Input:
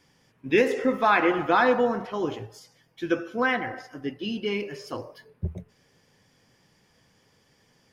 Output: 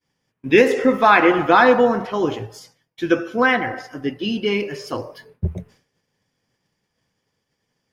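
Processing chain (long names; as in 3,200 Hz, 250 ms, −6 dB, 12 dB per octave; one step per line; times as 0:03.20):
downward expander −51 dBFS
level +7.5 dB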